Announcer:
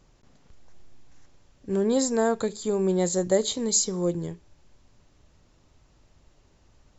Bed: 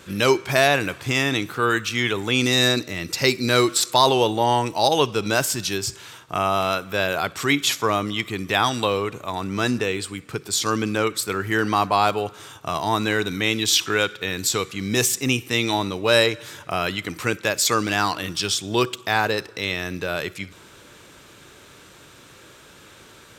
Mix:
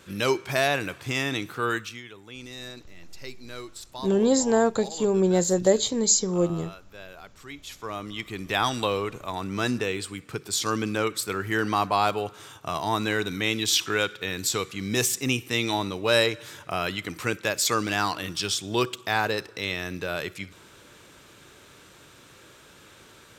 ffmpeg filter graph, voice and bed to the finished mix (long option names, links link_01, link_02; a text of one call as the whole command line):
ffmpeg -i stem1.wav -i stem2.wav -filter_complex "[0:a]adelay=2350,volume=2.5dB[link_01];[1:a]volume=11.5dB,afade=type=out:start_time=1.73:duration=0.29:silence=0.16788,afade=type=in:start_time=7.65:duration=1.02:silence=0.133352[link_02];[link_01][link_02]amix=inputs=2:normalize=0" out.wav